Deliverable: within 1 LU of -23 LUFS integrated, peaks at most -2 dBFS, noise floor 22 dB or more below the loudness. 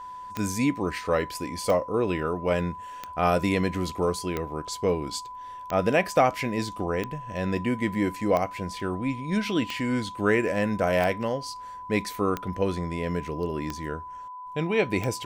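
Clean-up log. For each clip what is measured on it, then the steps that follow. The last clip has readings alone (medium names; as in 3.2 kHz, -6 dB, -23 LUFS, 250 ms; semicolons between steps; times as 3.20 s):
clicks found 12; steady tone 1 kHz; tone level -37 dBFS; loudness -27.5 LUFS; peak level -8.5 dBFS; loudness target -23.0 LUFS
-> de-click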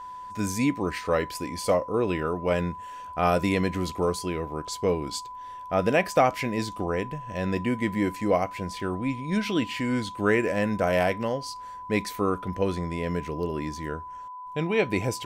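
clicks found 0; steady tone 1 kHz; tone level -37 dBFS
-> band-stop 1 kHz, Q 30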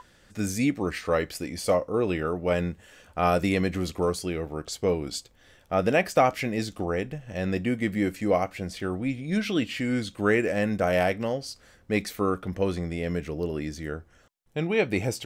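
steady tone not found; loudness -27.5 LUFS; peak level -8.5 dBFS; loudness target -23.0 LUFS
-> trim +4.5 dB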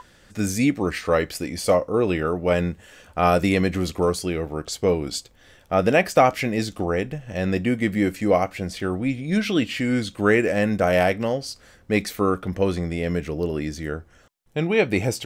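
loudness -23.0 LUFS; peak level -4.0 dBFS; noise floor -54 dBFS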